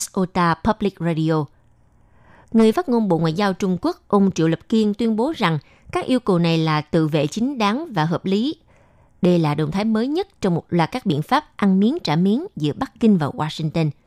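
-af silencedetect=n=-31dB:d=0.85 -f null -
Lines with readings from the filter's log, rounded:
silence_start: 1.45
silence_end: 2.52 | silence_duration: 1.07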